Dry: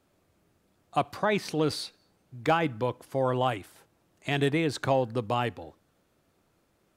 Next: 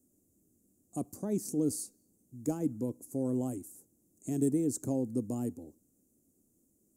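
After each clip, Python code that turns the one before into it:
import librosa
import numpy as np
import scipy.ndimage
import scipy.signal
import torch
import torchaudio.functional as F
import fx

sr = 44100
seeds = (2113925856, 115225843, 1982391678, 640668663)

y = fx.curve_eq(x, sr, hz=(160.0, 250.0, 960.0, 1600.0, 3600.0, 7000.0), db=(0, 11, -18, -24, -26, 13))
y = F.gain(torch.from_numpy(y), -6.5).numpy()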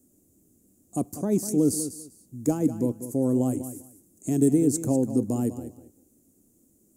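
y = fx.echo_feedback(x, sr, ms=197, feedback_pct=19, wet_db=-12.0)
y = F.gain(torch.from_numpy(y), 8.5).numpy()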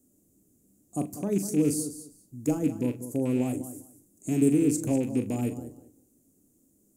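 y = fx.rattle_buzz(x, sr, strikes_db=-27.0, level_db=-33.0)
y = fx.doubler(y, sr, ms=40.0, db=-10.5)
y = fx.room_shoebox(y, sr, seeds[0], volume_m3=260.0, walls='furnished', distance_m=0.34)
y = F.gain(torch.from_numpy(y), -3.5).numpy()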